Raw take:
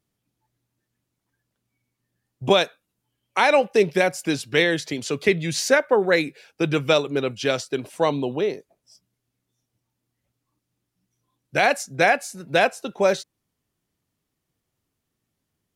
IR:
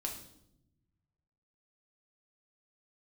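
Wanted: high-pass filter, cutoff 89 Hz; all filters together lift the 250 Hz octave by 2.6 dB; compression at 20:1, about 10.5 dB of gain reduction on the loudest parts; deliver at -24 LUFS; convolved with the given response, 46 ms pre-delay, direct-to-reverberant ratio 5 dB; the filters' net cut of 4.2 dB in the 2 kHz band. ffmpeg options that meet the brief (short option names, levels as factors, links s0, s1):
-filter_complex "[0:a]highpass=89,equalizer=f=250:t=o:g=4,equalizer=f=2000:t=o:g=-5.5,acompressor=threshold=0.0794:ratio=20,asplit=2[s0][s1];[1:a]atrim=start_sample=2205,adelay=46[s2];[s1][s2]afir=irnorm=-1:irlink=0,volume=0.562[s3];[s0][s3]amix=inputs=2:normalize=0,volume=1.5"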